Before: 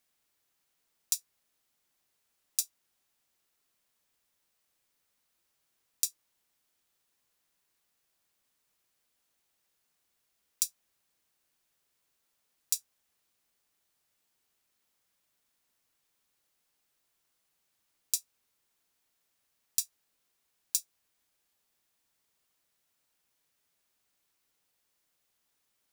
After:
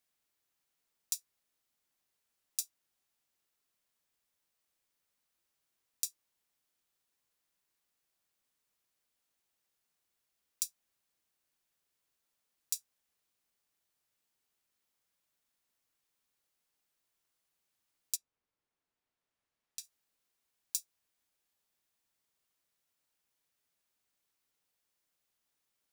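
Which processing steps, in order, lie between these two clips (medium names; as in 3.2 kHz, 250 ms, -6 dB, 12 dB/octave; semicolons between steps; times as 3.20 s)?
18.15–19.83 s: low-pass 1 kHz -> 2.7 kHz 6 dB/octave; trim -5.5 dB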